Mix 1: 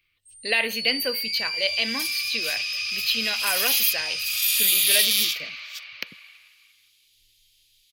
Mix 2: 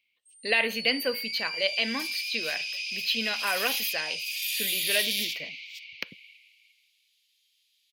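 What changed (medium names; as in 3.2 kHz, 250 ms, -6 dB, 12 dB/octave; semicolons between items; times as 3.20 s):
first sound: add rippled Chebyshev high-pass 2.1 kHz, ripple 3 dB; second sound -4.0 dB; master: add treble shelf 4.4 kHz -8 dB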